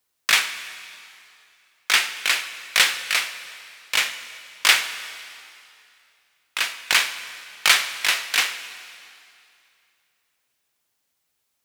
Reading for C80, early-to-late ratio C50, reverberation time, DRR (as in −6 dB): 12.0 dB, 11.5 dB, 2.6 s, 10.5 dB